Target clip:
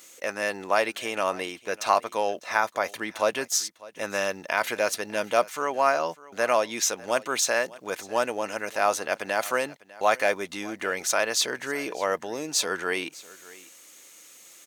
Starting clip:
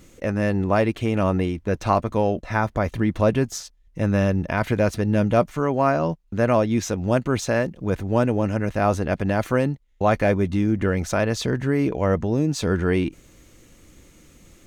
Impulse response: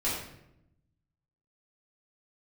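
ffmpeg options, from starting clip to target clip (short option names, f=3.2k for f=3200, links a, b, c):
-af "highpass=640,highshelf=f=3.6k:g=10.5,aecho=1:1:600:0.0944"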